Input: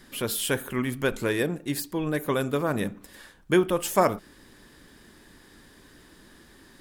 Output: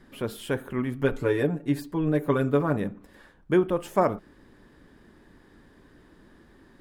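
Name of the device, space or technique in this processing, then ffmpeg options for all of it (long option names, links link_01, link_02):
through cloth: -filter_complex "[0:a]highshelf=frequency=2700:gain=-17,asettb=1/sr,asplit=3[link_01][link_02][link_03];[link_01]atrim=end=1.014[link_04];[link_02]atrim=start=1.01:end=2.77,asetpts=PTS-STARTPTS,afade=type=in:duration=0.004:curve=qsin,afade=type=out:start_time=1.756:duration=0.004:curve=qsin,aecho=1:1:7:0.81,atrim=end_sample=77616[link_05];[link_03]atrim=start=2.766[link_06];[link_04][link_05]acrossfade=duration=0.004:curve1=hsin:curve2=qsin[link_07];[link_07][link_06]acrossfade=duration=0.004:curve1=qsin:curve2=hsin"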